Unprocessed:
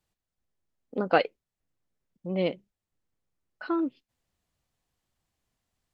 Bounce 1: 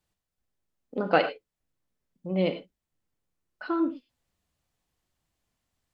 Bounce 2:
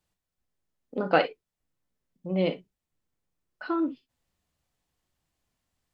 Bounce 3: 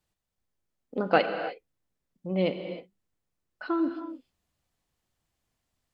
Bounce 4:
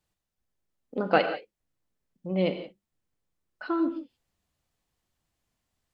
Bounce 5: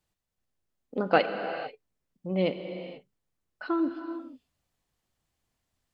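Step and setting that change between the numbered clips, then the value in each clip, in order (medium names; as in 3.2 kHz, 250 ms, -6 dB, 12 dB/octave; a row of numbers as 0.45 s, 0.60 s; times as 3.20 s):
gated-style reverb, gate: 130 ms, 80 ms, 340 ms, 200 ms, 510 ms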